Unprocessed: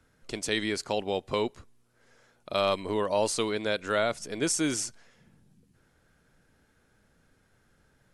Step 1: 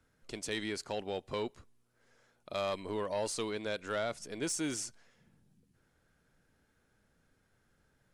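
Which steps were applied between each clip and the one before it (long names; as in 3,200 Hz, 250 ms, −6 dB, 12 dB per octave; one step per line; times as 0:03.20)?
soft clipping −19 dBFS, distortion −17 dB
level −6.5 dB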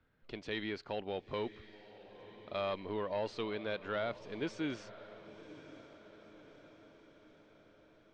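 low-pass filter 3,800 Hz 24 dB per octave
feedback delay with all-pass diffusion 1,013 ms, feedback 57%, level −15.5 dB
level −1.5 dB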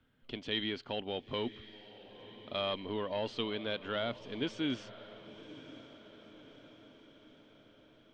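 thirty-one-band graphic EQ 125 Hz +5 dB, 250 Hz +9 dB, 3,150 Hz +12 dB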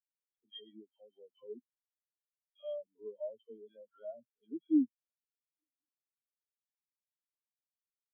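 all-pass dispersion lows, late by 119 ms, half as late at 910 Hz
every bin expanded away from the loudest bin 4 to 1
level +3.5 dB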